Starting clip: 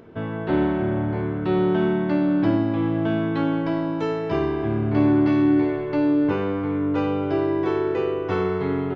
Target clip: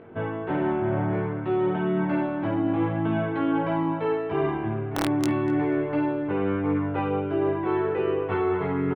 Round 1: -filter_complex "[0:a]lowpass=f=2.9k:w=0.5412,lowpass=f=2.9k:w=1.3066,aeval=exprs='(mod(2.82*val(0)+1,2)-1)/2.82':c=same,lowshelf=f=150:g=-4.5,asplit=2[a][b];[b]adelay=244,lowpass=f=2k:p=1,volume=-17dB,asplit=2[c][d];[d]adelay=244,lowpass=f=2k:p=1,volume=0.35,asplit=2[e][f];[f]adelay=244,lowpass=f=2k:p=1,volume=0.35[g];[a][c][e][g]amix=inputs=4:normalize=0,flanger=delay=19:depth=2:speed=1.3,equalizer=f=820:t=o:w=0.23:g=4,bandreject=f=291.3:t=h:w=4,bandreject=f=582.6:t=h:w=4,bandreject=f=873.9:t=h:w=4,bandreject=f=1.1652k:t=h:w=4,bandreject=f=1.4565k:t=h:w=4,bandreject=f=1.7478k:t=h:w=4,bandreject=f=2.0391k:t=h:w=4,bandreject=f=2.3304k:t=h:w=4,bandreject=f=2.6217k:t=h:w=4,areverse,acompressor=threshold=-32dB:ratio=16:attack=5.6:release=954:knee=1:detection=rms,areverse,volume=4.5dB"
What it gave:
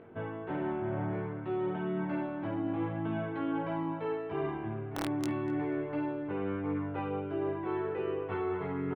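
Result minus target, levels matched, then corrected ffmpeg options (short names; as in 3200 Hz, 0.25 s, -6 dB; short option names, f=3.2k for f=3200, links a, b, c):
compressor: peak gain reduction +9 dB
-filter_complex "[0:a]lowpass=f=2.9k:w=0.5412,lowpass=f=2.9k:w=1.3066,aeval=exprs='(mod(2.82*val(0)+1,2)-1)/2.82':c=same,lowshelf=f=150:g=-4.5,asplit=2[a][b];[b]adelay=244,lowpass=f=2k:p=1,volume=-17dB,asplit=2[c][d];[d]adelay=244,lowpass=f=2k:p=1,volume=0.35,asplit=2[e][f];[f]adelay=244,lowpass=f=2k:p=1,volume=0.35[g];[a][c][e][g]amix=inputs=4:normalize=0,flanger=delay=19:depth=2:speed=1.3,equalizer=f=820:t=o:w=0.23:g=4,bandreject=f=291.3:t=h:w=4,bandreject=f=582.6:t=h:w=4,bandreject=f=873.9:t=h:w=4,bandreject=f=1.1652k:t=h:w=4,bandreject=f=1.4565k:t=h:w=4,bandreject=f=1.7478k:t=h:w=4,bandreject=f=2.0391k:t=h:w=4,bandreject=f=2.3304k:t=h:w=4,bandreject=f=2.6217k:t=h:w=4,areverse,acompressor=threshold=-22.5dB:ratio=16:attack=5.6:release=954:knee=1:detection=rms,areverse,volume=4.5dB"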